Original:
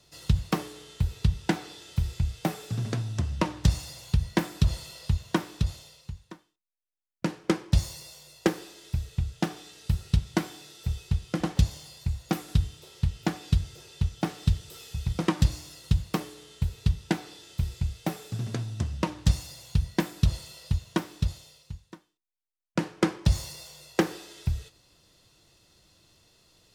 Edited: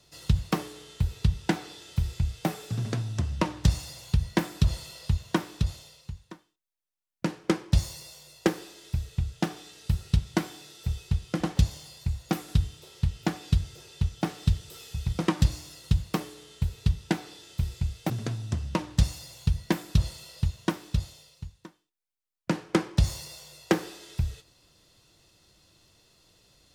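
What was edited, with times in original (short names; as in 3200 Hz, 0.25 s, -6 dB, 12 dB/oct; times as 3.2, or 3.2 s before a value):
18.1–18.38 cut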